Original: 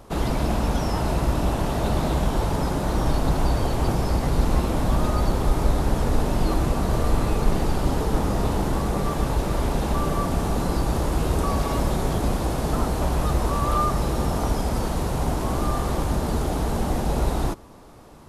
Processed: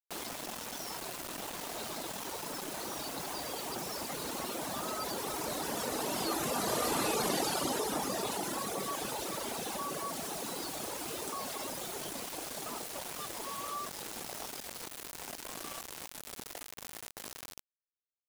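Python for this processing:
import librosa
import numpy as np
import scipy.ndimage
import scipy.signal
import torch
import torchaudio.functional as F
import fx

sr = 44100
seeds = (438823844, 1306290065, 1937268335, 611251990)

y = fx.doppler_pass(x, sr, speed_mps=11, closest_m=5.9, pass_at_s=7.22)
y = fx.echo_feedback(y, sr, ms=388, feedback_pct=36, wet_db=-18.0)
y = fx.dereverb_blind(y, sr, rt60_s=2.0)
y = scipy.signal.sosfilt(scipy.signal.butter(2, 290.0, 'highpass', fs=sr, output='sos'), y)
y = fx.high_shelf(y, sr, hz=2700.0, db=11.5)
y = fx.quant_dither(y, sr, seeds[0], bits=8, dither='none')
y = fx.env_flatten(y, sr, amount_pct=50)
y = y * 10.0 ** (-2.0 / 20.0)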